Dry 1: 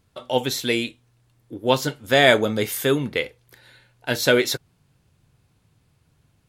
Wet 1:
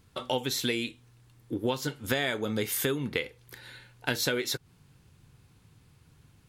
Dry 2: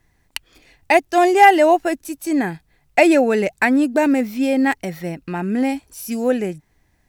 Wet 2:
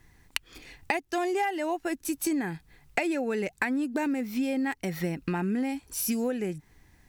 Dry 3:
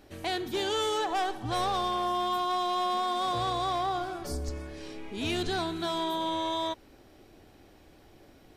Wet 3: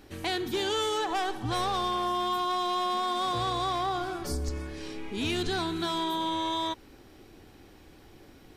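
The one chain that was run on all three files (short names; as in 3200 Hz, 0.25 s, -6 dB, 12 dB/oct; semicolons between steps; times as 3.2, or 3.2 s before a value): bell 630 Hz -7 dB 0.41 oct; compressor 16:1, threshold -29 dBFS; gain +3.5 dB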